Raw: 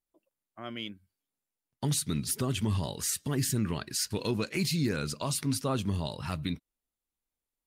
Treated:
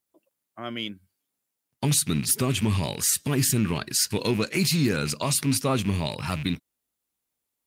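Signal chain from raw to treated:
loose part that buzzes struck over −38 dBFS, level −34 dBFS
high-pass filter 80 Hz
high-shelf EQ 7,800 Hz +4.5 dB
level +6 dB

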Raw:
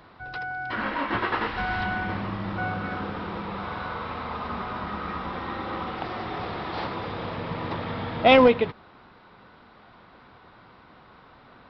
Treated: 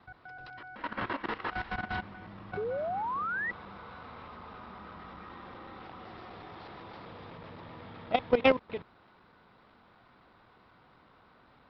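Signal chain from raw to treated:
slices reordered back to front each 126 ms, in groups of 2
sound drawn into the spectrogram rise, 0:02.57–0:03.51, 400–2,000 Hz −18 dBFS
output level in coarse steps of 14 dB
level −5 dB

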